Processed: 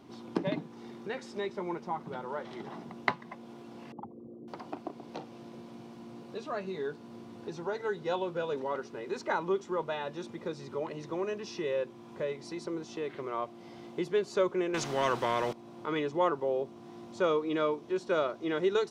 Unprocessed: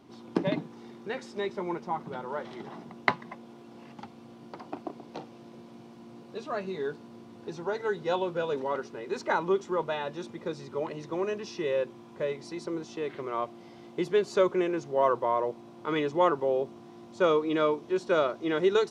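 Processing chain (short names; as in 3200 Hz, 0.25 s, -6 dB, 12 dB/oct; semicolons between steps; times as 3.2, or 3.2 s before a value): 3.92–4.48 formant sharpening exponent 3; in parallel at +1 dB: compressor, threshold -42 dBFS, peak gain reduction 22 dB; 14.74–15.53 on the sum: spectral compressor 2:1; gain -5 dB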